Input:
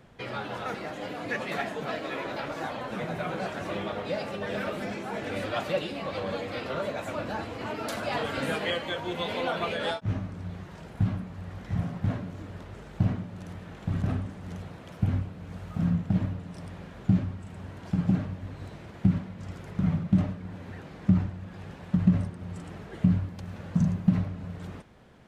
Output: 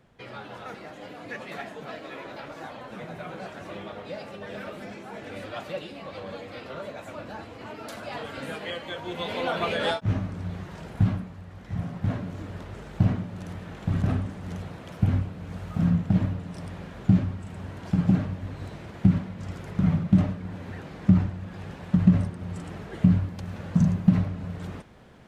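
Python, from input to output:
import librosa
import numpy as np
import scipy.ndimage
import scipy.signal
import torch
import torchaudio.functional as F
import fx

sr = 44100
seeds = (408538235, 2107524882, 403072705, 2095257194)

y = fx.gain(x, sr, db=fx.line((8.61, -5.5), (9.78, 4.0), (11.09, 4.0), (11.47, -4.5), (12.33, 3.5)))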